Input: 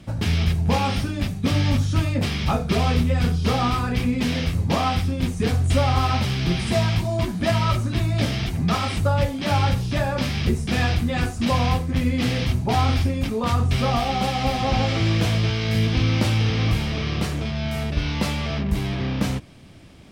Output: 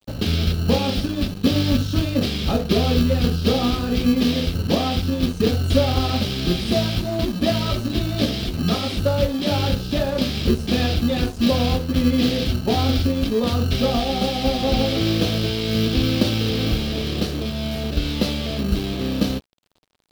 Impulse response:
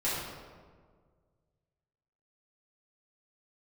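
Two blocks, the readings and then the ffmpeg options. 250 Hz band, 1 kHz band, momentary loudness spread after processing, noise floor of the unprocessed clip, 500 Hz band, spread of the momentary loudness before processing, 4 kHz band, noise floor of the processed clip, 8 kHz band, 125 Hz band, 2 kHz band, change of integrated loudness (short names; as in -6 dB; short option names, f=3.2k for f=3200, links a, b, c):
+4.0 dB, -3.5 dB, 5 LU, -30 dBFS, +4.5 dB, 4 LU, +4.0 dB, -31 dBFS, +0.5 dB, -2.0 dB, -2.5 dB, +1.0 dB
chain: -filter_complex "[0:a]acrossover=split=390|1800[a][b][c];[a]acrusher=samples=31:mix=1:aa=0.000001[d];[d][b][c]amix=inputs=3:normalize=0,equalizer=f=125:t=o:w=1:g=-9,equalizer=f=250:t=o:w=1:g=4,equalizer=f=500:t=o:w=1:g=6,equalizer=f=1k:t=o:w=1:g=-11,equalizer=f=2k:t=o:w=1:g=-8,equalizer=f=4k:t=o:w=1:g=7,equalizer=f=8k:t=o:w=1:g=-11,aeval=exprs='sgn(val(0))*max(abs(val(0))-0.00891,0)':c=same,volume=4dB"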